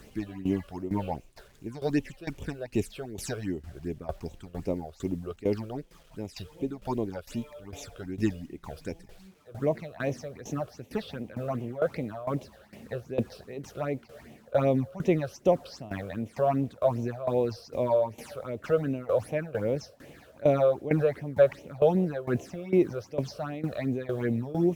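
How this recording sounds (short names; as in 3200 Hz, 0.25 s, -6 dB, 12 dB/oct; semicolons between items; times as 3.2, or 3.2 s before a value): phasing stages 8, 2.6 Hz, lowest notch 250–1500 Hz; a quantiser's noise floor 10-bit, dither none; tremolo saw down 2.2 Hz, depth 85%; Opus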